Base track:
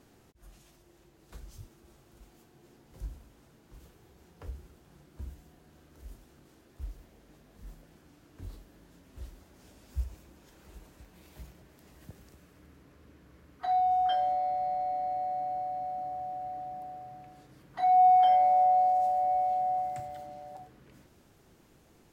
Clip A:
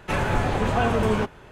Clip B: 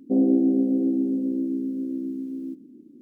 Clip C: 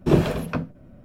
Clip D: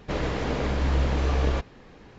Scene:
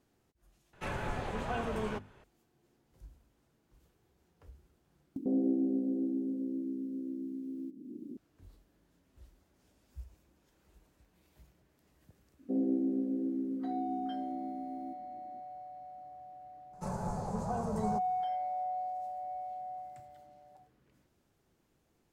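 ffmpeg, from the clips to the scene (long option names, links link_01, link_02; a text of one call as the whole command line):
ffmpeg -i bed.wav -i cue0.wav -i cue1.wav -filter_complex "[1:a]asplit=2[link_01][link_02];[2:a]asplit=2[link_03][link_04];[0:a]volume=-13dB[link_05];[link_01]bandreject=frequency=50:width_type=h:width=6,bandreject=frequency=100:width_type=h:width=6,bandreject=frequency=150:width_type=h:width=6,bandreject=frequency=200:width_type=h:width=6,bandreject=frequency=250:width_type=h:width=6,bandreject=frequency=300:width_type=h:width=6,bandreject=frequency=350:width_type=h:width=6[link_06];[link_03]acompressor=mode=upward:threshold=-27dB:ratio=4:attack=63:release=357:knee=2.83:detection=peak[link_07];[link_02]firequalizer=gain_entry='entry(100,0);entry(190,14);entry(280,-8);entry(420,3);entry(840,7);entry(1800,-13);entry(3100,-19);entry(4600,3);entry(7100,9);entry(13000,3)':delay=0.05:min_phase=1[link_08];[link_05]asplit=3[link_09][link_10][link_11];[link_09]atrim=end=0.734[link_12];[link_06]atrim=end=1.51,asetpts=PTS-STARTPTS,volume=-13dB[link_13];[link_10]atrim=start=2.236:end=5.164[link_14];[link_07]atrim=end=3.01,asetpts=PTS-STARTPTS,volume=-10.5dB[link_15];[link_11]atrim=start=8.166[link_16];[link_04]atrim=end=3.01,asetpts=PTS-STARTPTS,volume=-11.5dB,afade=type=in:duration=0.004:curve=hsin,afade=type=out:start_time=3.006:duration=0.004:curve=hsin,adelay=12390[link_17];[link_08]atrim=end=1.51,asetpts=PTS-STARTPTS,volume=-17.5dB,afade=type=in:duration=0.004:curve=hsin,afade=type=out:start_time=1.506:duration=0.004:curve=hsin,adelay=16730[link_18];[link_12][link_13]acrossfade=duration=0.004:curve1=hsin:curve2=hsin[link_19];[link_19][link_14]acrossfade=duration=0.004:curve1=hsin:curve2=hsin[link_20];[link_20][link_15]acrossfade=duration=0.004:curve1=hsin:curve2=hsin[link_21];[link_21][link_16]acrossfade=duration=0.004:curve1=hsin:curve2=hsin[link_22];[link_22][link_17][link_18]amix=inputs=3:normalize=0" out.wav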